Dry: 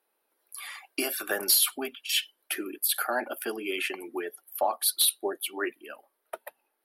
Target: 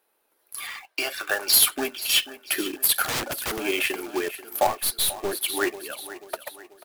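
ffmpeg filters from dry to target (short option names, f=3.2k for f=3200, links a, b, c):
-filter_complex "[0:a]asplit=3[a][b][c];[a]afade=t=out:st=0.66:d=0.02[d];[b]highpass=610,lowpass=5.6k,afade=t=in:st=0.66:d=0.02,afade=t=out:st=1.52:d=0.02[e];[c]afade=t=in:st=1.52:d=0.02[f];[d][e][f]amix=inputs=3:normalize=0,aecho=1:1:488|976|1464|1952:0.178|0.08|0.036|0.0162,acrusher=bits=2:mode=log:mix=0:aa=0.000001,asplit=3[g][h][i];[g]afade=t=out:st=3.03:d=0.02[j];[h]aeval=exprs='(mod(22.4*val(0)+1,2)-1)/22.4':c=same,afade=t=in:st=3.03:d=0.02,afade=t=out:st=3.58:d=0.02[k];[i]afade=t=in:st=3.58:d=0.02[l];[j][k][l]amix=inputs=3:normalize=0,asettb=1/sr,asplit=3[m][n][o];[m]atrim=end=4.674[p];[n]atrim=start=4.67:end=5.33,asetpts=PTS-STARTPTS,afade=t=in:d=0.004:c=qsin,afade=t=out:st=0.656:d=0.004:c=qsin,aeval=exprs='(tanh(17.8*val(0)+0.5)-tanh(0.5))/17.8':c=same[q];[o]atrim=start=5.326[r];[p][q]acrossfade=d=0.004:c1=hsin:c2=qsin[s];[s][r]acrossfade=d=0.004:c1=qsin:c2=hsin,volume=5.5dB"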